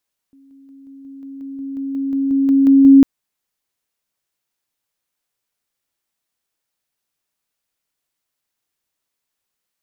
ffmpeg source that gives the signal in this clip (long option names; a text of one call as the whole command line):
ffmpeg -f lavfi -i "aevalsrc='pow(10,(-45.5+3*floor(t/0.18))/20)*sin(2*PI*273*t)':duration=2.7:sample_rate=44100" out.wav